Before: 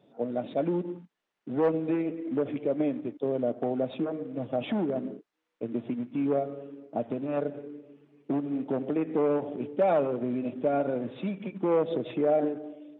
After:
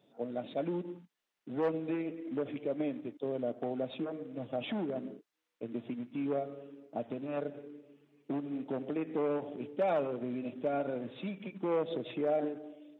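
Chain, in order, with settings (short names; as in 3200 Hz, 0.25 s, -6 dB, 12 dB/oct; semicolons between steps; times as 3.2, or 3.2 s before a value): high shelf 2200 Hz +9 dB; gain -7 dB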